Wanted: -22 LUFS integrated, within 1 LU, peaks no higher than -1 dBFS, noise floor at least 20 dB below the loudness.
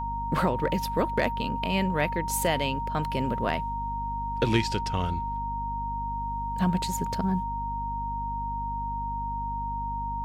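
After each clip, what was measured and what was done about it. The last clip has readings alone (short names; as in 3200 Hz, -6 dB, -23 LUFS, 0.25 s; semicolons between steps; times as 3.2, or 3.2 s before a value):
hum 50 Hz; harmonics up to 250 Hz; hum level -33 dBFS; steady tone 930 Hz; tone level -30 dBFS; loudness -29.0 LUFS; peak -11.5 dBFS; loudness target -22.0 LUFS
-> de-hum 50 Hz, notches 5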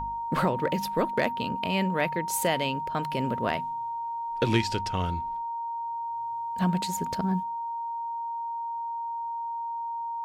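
hum none; steady tone 930 Hz; tone level -30 dBFS
-> notch 930 Hz, Q 30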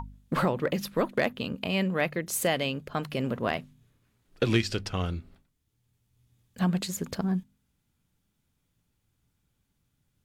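steady tone none; loudness -29.5 LUFS; peak -13.0 dBFS; loudness target -22.0 LUFS
-> gain +7.5 dB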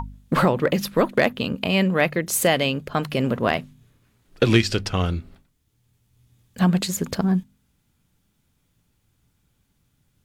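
loudness -22.0 LUFS; peak -5.5 dBFS; noise floor -69 dBFS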